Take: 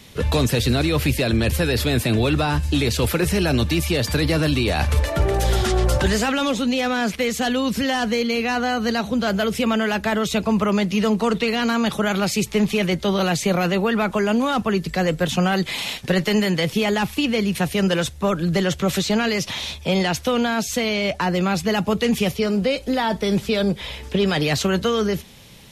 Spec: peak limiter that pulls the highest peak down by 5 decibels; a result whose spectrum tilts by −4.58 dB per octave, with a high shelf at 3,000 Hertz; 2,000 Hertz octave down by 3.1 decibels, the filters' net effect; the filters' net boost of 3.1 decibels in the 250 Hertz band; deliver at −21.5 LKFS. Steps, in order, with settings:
parametric band 250 Hz +4 dB
parametric band 2,000 Hz −7.5 dB
high-shelf EQ 3,000 Hz +8 dB
level −1.5 dB
brickwall limiter −13 dBFS

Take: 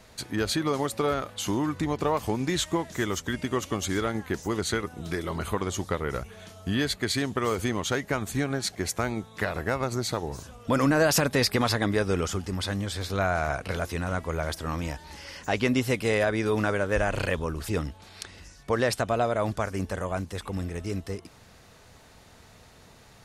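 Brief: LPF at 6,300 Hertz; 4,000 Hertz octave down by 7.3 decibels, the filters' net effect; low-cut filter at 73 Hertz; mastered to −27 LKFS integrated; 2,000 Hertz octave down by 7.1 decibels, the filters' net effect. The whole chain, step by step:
high-pass filter 73 Hz
low-pass filter 6,300 Hz
parametric band 2,000 Hz −8.5 dB
parametric band 4,000 Hz −6 dB
level +3 dB

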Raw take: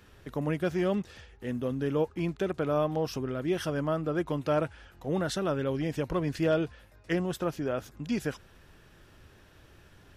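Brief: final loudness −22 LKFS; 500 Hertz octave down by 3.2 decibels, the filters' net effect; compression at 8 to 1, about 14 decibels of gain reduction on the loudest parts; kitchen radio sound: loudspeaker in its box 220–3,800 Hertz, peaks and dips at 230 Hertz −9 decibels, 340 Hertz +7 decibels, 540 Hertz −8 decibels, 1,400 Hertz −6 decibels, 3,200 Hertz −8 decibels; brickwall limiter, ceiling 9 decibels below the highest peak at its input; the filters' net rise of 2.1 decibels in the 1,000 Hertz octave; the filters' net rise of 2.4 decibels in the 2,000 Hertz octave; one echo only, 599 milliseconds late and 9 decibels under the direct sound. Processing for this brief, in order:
parametric band 500 Hz −4.5 dB
parametric band 1,000 Hz +5.5 dB
parametric band 2,000 Hz +5 dB
downward compressor 8 to 1, threshold −37 dBFS
brickwall limiter −33 dBFS
loudspeaker in its box 220–3,800 Hz, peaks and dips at 230 Hz −9 dB, 340 Hz +7 dB, 540 Hz −8 dB, 1,400 Hz −6 dB, 3,200 Hz −8 dB
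single-tap delay 599 ms −9 dB
level +23.5 dB

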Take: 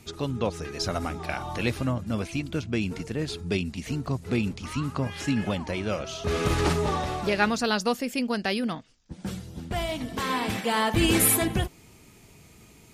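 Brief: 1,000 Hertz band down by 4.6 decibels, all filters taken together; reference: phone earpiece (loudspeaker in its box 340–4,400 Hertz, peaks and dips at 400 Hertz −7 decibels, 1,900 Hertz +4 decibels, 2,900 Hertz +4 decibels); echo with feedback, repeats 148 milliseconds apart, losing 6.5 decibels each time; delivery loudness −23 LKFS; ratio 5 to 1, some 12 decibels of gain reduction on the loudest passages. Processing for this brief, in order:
parametric band 1,000 Hz −6 dB
downward compressor 5 to 1, threshold −32 dBFS
loudspeaker in its box 340–4,400 Hz, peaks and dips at 400 Hz −7 dB, 1,900 Hz +4 dB, 2,900 Hz +4 dB
repeating echo 148 ms, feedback 47%, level −6.5 dB
level +15 dB

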